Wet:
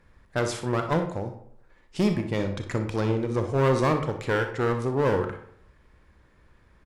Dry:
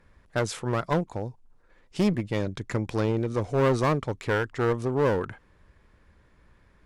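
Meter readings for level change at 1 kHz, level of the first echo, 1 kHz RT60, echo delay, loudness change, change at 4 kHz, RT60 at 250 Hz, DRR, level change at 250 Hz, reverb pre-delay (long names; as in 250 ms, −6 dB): +1.5 dB, −12.5 dB, 0.65 s, 61 ms, +0.5 dB, +1.0 dB, 0.65 s, 6.0 dB, +0.5 dB, 28 ms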